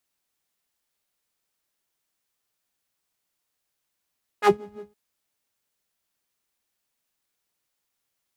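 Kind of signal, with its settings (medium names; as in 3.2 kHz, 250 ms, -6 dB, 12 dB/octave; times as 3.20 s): synth patch with filter wobble G#4, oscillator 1 saw, noise -5 dB, filter bandpass, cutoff 150 Hz, Q 1.5, filter envelope 3 oct, filter decay 0.10 s, filter sustain 5%, attack 57 ms, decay 0.10 s, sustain -22.5 dB, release 0.16 s, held 0.36 s, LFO 5.9 Hz, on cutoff 1.2 oct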